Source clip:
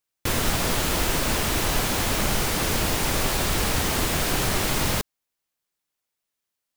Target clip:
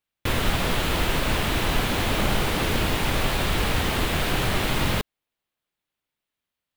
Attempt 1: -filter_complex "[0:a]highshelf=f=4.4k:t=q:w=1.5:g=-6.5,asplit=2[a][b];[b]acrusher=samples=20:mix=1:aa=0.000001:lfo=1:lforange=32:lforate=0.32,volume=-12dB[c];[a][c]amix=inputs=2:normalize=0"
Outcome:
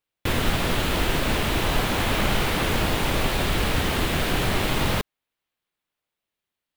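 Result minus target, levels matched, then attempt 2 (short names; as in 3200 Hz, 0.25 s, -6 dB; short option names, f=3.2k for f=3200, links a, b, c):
decimation with a swept rate: distortion -4 dB
-filter_complex "[0:a]highshelf=f=4.4k:t=q:w=1.5:g=-6.5,asplit=2[a][b];[b]acrusher=samples=70:mix=1:aa=0.000001:lfo=1:lforange=112:lforate=0.32,volume=-12dB[c];[a][c]amix=inputs=2:normalize=0"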